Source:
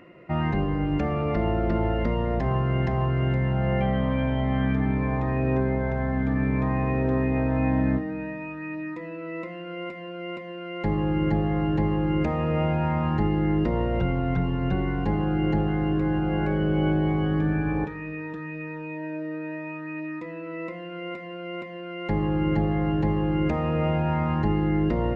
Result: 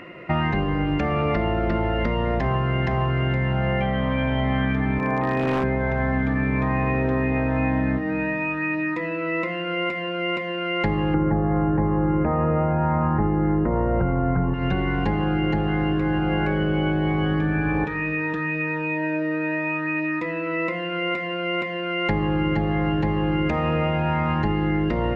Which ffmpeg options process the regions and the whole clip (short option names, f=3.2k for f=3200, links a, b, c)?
-filter_complex "[0:a]asettb=1/sr,asplit=3[a][b][c];[a]atrim=end=4.994[d];[b]atrim=start=4.99:end=5.64,asetpts=PTS-STARTPTS,afade=t=in:d=0.004:c=qsin,afade=t=out:st=0.646:d=0.004:c=qsin,highpass=170,lowpass=2.2k,aeval=exprs='0.0944*(abs(mod(val(0)/0.0944+3,4)-2)-1)':c=same[e];[c]atrim=start=5.636[f];[d][e]acrossfade=d=0.004:c1=hsin:c2=qsin[g];[g][f]acrossfade=d=0.004:c1=qsin:c2=hsin,asettb=1/sr,asplit=3[h][i][j];[h]atrim=end=11.144[k];[i]atrim=start=11.14:end=14.54,asetpts=PTS-STARTPTS,afade=t=in:d=0.004:c=qsin,afade=t=out:st=3.396:d=0.004:c=qsin,lowpass=f=1.5k:w=0.5412,lowpass=f=1.5k:w=1.3066,acontrast=78[l];[j]atrim=start=14.536[m];[k][l]acrossfade=d=0.004:c1=hsin:c2=qsin[n];[n][m]acrossfade=d=0.004:c1=qsin:c2=hsin,equalizer=f=2.3k:w=0.48:g=6.5,acompressor=threshold=-26dB:ratio=6,volume=7dB"